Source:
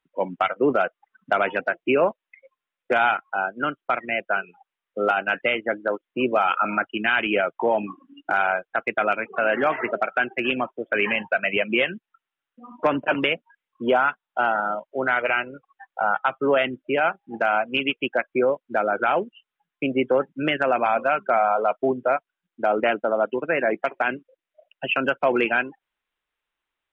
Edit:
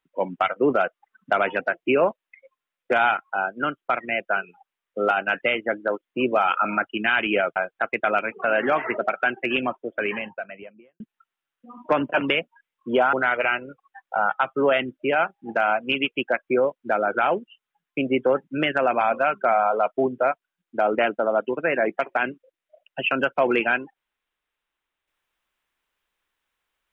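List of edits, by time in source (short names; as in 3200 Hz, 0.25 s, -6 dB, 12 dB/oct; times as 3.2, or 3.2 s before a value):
7.56–8.5 cut
10.55–11.94 studio fade out
14.07–14.98 cut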